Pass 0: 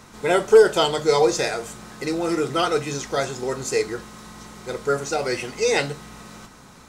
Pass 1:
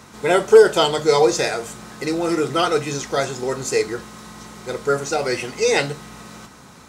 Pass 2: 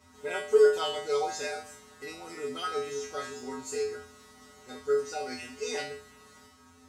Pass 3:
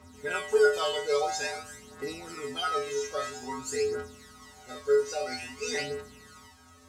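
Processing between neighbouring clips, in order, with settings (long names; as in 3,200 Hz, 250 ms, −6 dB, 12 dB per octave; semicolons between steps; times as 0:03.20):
high-pass filter 58 Hz; level +2.5 dB
tuned comb filter 85 Hz, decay 0.43 s, harmonics odd, mix 100%
phase shifter 0.5 Hz, delay 2.1 ms, feedback 60%; level +1.5 dB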